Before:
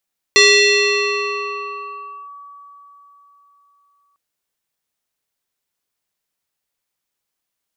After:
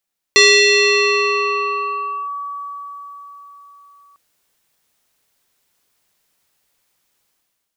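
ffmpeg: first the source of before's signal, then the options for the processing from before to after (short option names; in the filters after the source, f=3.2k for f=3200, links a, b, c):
-f lavfi -i "aevalsrc='0.501*pow(10,-3*t/4.19)*sin(2*PI*1140*t+2.8*clip(1-t/1.93,0,1)*sin(2*PI*1.36*1140*t))':d=3.8:s=44100"
-af "dynaudnorm=f=660:g=3:m=13dB"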